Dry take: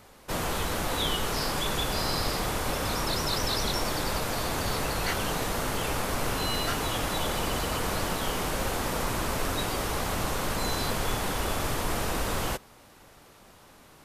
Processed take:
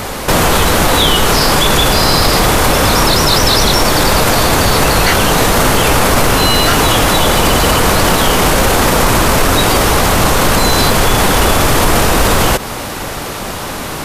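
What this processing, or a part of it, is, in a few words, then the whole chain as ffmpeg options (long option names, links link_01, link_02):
loud club master: -af "acompressor=threshold=-33dB:ratio=2,asoftclip=type=hard:threshold=-24.5dB,alimiter=level_in=33dB:limit=-1dB:release=50:level=0:latency=1,volume=-1dB"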